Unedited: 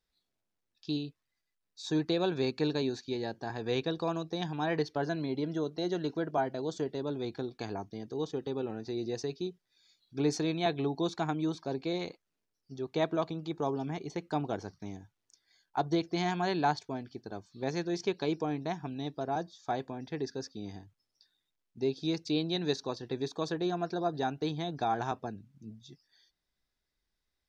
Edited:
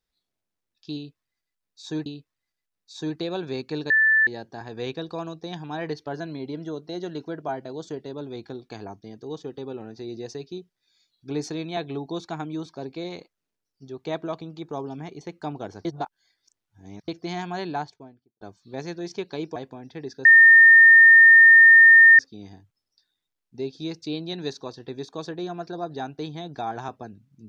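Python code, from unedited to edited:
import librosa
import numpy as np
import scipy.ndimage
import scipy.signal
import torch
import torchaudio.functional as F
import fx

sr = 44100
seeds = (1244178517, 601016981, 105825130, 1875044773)

y = fx.studio_fade_out(x, sr, start_s=16.48, length_s=0.82)
y = fx.edit(y, sr, fx.repeat(start_s=0.95, length_s=1.11, count=2),
    fx.bleep(start_s=2.79, length_s=0.37, hz=1760.0, db=-15.0),
    fx.reverse_span(start_s=14.74, length_s=1.23),
    fx.cut(start_s=18.45, length_s=1.28),
    fx.insert_tone(at_s=20.42, length_s=1.94, hz=1820.0, db=-8.0), tone=tone)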